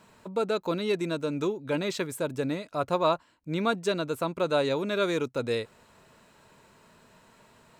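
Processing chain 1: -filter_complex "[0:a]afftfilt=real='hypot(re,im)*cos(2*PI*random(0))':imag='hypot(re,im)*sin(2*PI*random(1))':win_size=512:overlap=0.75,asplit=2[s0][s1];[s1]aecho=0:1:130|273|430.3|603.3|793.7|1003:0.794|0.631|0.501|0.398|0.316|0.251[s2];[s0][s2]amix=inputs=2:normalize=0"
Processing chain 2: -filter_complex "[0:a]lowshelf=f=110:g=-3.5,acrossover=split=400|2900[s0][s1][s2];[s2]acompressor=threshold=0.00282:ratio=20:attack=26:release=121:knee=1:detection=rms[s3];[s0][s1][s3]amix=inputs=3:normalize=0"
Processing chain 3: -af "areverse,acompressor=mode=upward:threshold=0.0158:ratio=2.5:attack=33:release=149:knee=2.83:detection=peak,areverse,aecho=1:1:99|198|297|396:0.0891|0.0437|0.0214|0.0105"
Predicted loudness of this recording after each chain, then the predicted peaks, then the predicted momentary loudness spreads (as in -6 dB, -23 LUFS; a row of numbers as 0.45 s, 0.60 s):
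-31.5 LUFS, -29.5 LUFS, -29.0 LUFS; -16.0 dBFS, -12.5 dBFS, -12.5 dBFS; 11 LU, 6 LU, 19 LU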